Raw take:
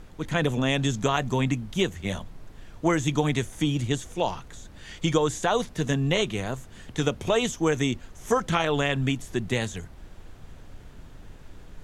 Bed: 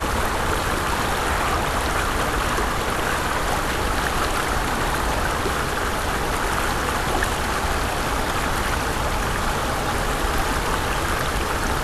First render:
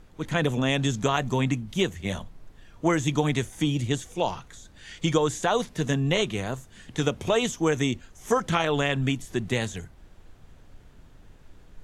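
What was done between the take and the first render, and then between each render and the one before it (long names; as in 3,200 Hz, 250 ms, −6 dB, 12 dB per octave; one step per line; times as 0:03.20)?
noise reduction from a noise print 6 dB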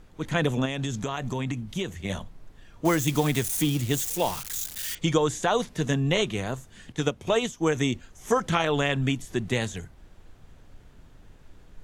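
0:00.65–0:02.10: downward compressor, threshold −25 dBFS
0:02.85–0:04.95: spike at every zero crossing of −24 dBFS
0:06.92–0:07.75: expander for the loud parts, over −36 dBFS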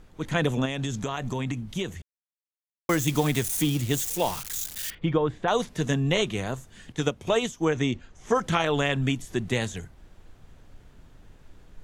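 0:02.02–0:02.89: silence
0:04.90–0:05.48: high-frequency loss of the air 450 metres
0:07.65–0:08.35: high-frequency loss of the air 85 metres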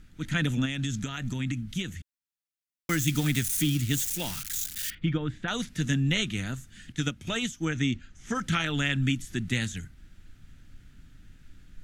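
flat-topped bell 620 Hz −14 dB
notch filter 1,100 Hz, Q 7.4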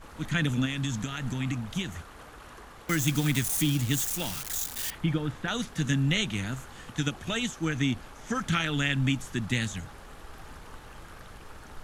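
mix in bed −25.5 dB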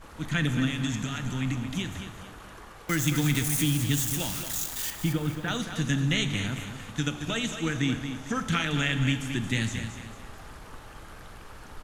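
on a send: repeating echo 224 ms, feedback 37%, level −9 dB
on the sum: four-comb reverb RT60 1.3 s, combs from 27 ms, DRR 10.5 dB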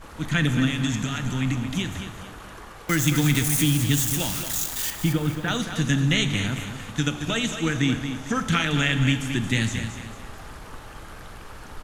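level +4.5 dB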